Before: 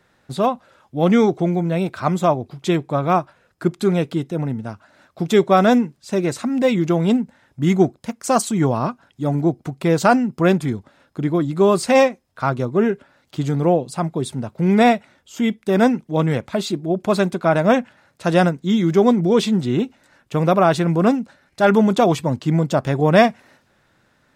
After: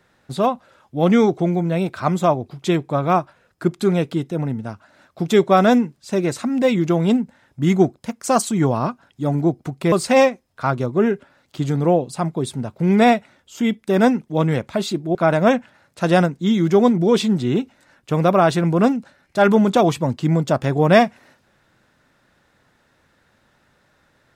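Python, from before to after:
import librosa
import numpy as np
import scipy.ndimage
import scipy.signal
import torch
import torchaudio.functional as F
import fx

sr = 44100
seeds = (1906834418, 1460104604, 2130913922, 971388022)

y = fx.edit(x, sr, fx.cut(start_s=9.92, length_s=1.79),
    fx.cut(start_s=16.94, length_s=0.44), tone=tone)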